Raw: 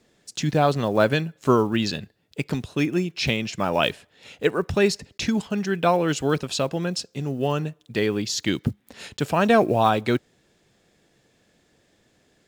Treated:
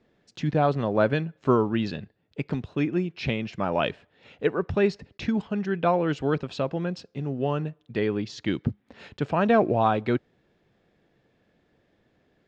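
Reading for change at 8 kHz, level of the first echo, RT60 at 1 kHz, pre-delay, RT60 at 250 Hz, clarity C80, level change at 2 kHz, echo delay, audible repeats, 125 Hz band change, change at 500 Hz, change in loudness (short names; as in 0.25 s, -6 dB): under -15 dB, none, none, none, none, none, -5.0 dB, none, none, -2.0 dB, -2.5 dB, -3.0 dB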